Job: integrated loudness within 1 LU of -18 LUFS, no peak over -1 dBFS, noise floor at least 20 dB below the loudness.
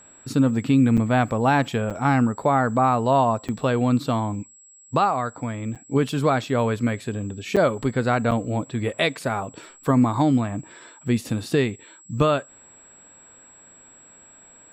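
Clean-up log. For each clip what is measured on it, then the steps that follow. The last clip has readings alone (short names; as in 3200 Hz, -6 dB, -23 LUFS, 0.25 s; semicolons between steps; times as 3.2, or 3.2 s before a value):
dropouts 6; longest dropout 6.7 ms; steady tone 7700 Hz; tone level -48 dBFS; loudness -22.5 LUFS; peak -9.0 dBFS; loudness target -18.0 LUFS
-> interpolate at 0.97/1.9/3.48/5.75/7.56/8.31, 6.7 ms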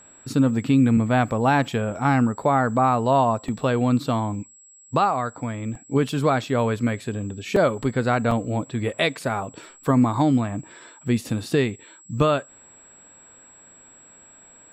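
dropouts 0; steady tone 7700 Hz; tone level -48 dBFS
-> notch 7700 Hz, Q 30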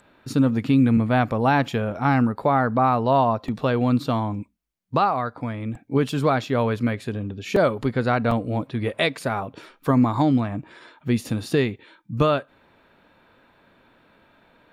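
steady tone none; loudness -22.5 LUFS; peak -9.0 dBFS; loudness target -18.0 LUFS
-> gain +4.5 dB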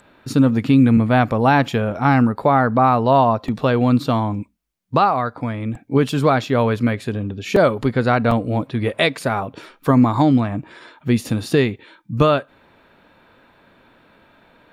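loudness -18.0 LUFS; peak -4.5 dBFS; noise floor -55 dBFS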